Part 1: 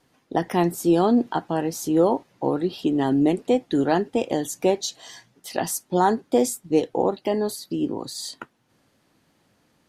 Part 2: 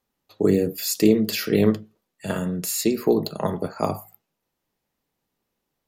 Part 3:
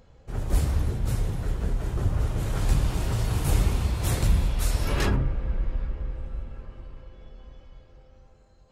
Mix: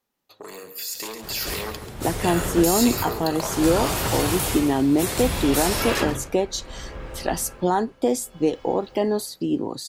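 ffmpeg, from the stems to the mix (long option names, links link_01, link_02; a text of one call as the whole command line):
ffmpeg -i stem1.wav -i stem2.wav -i stem3.wav -filter_complex "[0:a]alimiter=limit=-11.5dB:level=0:latency=1:release=347,adelay=1700,volume=-9dB[link_01];[1:a]lowshelf=frequency=170:gain=-8.5,asoftclip=type=tanh:threshold=-16.5dB,acrossover=split=650|4200[link_02][link_03][link_04];[link_02]acompressor=threshold=-54dB:ratio=4[link_05];[link_03]acompressor=threshold=-41dB:ratio=4[link_06];[link_04]acompressor=threshold=-29dB:ratio=4[link_07];[link_05][link_06][link_07]amix=inputs=3:normalize=0,volume=0.5dB,asplit=2[link_08][link_09];[link_09]volume=-12dB[link_10];[2:a]lowpass=frequency=2400:poles=1,aemphasis=mode=production:type=riaa,tremolo=f=0.64:d=0.78,adelay=950,volume=2dB,asplit=2[link_11][link_12];[link_12]volume=-21.5dB[link_13];[link_08][link_11]amix=inputs=2:normalize=0,alimiter=level_in=1dB:limit=-24dB:level=0:latency=1:release=28,volume=-1dB,volume=0dB[link_14];[link_10][link_13]amix=inputs=2:normalize=0,aecho=0:1:137|274|411|548:1|0.3|0.09|0.027[link_15];[link_01][link_14][link_15]amix=inputs=3:normalize=0,dynaudnorm=framelen=290:gausssize=9:maxgain=10.5dB" out.wav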